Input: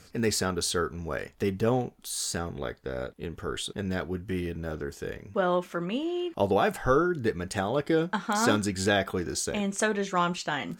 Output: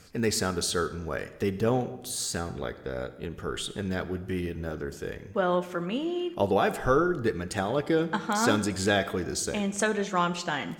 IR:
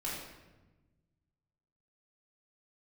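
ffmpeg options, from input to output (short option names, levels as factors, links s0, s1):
-filter_complex "[0:a]asplit=2[s0][s1];[1:a]atrim=start_sample=2205,asetrate=48510,aresample=44100,adelay=67[s2];[s1][s2]afir=irnorm=-1:irlink=0,volume=0.15[s3];[s0][s3]amix=inputs=2:normalize=0"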